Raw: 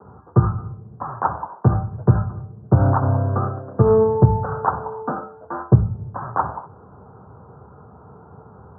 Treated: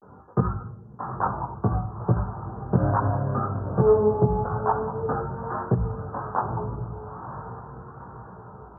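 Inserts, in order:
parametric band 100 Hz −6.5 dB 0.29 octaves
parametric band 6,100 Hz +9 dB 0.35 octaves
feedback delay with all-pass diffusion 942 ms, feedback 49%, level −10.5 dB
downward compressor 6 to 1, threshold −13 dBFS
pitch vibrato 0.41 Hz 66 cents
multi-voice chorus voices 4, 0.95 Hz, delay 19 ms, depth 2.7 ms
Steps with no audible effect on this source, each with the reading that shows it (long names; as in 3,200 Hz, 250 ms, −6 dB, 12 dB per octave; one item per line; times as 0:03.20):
parametric band 6,100 Hz: nothing at its input above 1,500 Hz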